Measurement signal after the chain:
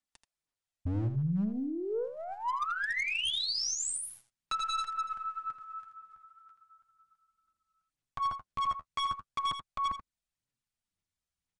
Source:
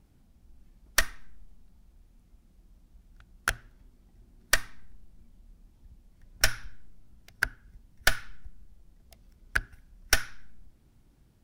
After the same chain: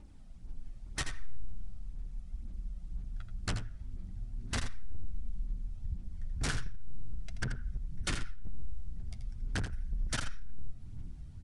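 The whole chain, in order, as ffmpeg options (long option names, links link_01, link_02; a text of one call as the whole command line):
ffmpeg -i in.wav -filter_complex "[0:a]acrossover=split=8300[link_01][link_02];[link_02]acompressor=threshold=-46dB:ratio=4:attack=1:release=60[link_03];[link_01][link_03]amix=inputs=2:normalize=0,asubboost=boost=3.5:cutoff=230,asplit=2[link_04][link_05];[link_05]acompressor=threshold=-38dB:ratio=4,volume=0.5dB[link_06];[link_04][link_06]amix=inputs=2:normalize=0,aphaser=in_gain=1:out_gain=1:delay=1.6:decay=0.46:speed=2:type=sinusoidal,aeval=exprs='(mod(2.82*val(0)+1,2)-1)/2.82':channel_layout=same,aeval=exprs='0.355*(cos(1*acos(clip(val(0)/0.355,-1,1)))-cos(1*PI/2))+0.0141*(cos(3*acos(clip(val(0)/0.355,-1,1)))-cos(3*PI/2))+0.0562*(cos(5*acos(clip(val(0)/0.355,-1,1)))-cos(5*PI/2))+0.0112*(cos(6*acos(clip(val(0)/0.355,-1,1)))-cos(6*PI/2))+0.00224*(cos(7*acos(clip(val(0)/0.355,-1,1)))-cos(7*PI/2))':channel_layout=same,flanger=delay=3.2:depth=9.7:regen=-27:speed=0.4:shape=triangular,aeval=exprs='0.0794*(abs(mod(val(0)/0.0794+3,4)-2)-1)':channel_layout=same,aecho=1:1:82:0.355,aresample=22050,aresample=44100,volume=-4.5dB" out.wav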